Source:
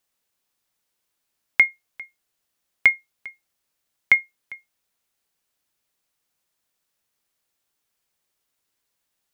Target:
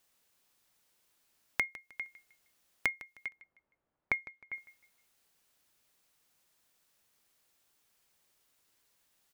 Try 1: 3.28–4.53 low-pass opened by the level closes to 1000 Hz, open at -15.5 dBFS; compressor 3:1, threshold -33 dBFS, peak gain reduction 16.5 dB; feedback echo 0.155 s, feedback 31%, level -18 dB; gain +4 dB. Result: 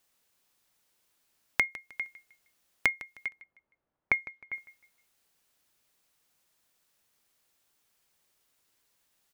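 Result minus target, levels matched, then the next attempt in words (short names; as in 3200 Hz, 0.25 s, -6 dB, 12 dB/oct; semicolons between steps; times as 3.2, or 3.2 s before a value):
compressor: peak gain reduction -5.5 dB
3.28–4.53 low-pass opened by the level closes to 1000 Hz, open at -15.5 dBFS; compressor 3:1, threshold -41 dBFS, peak gain reduction 21.5 dB; feedback echo 0.155 s, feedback 31%, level -18 dB; gain +4 dB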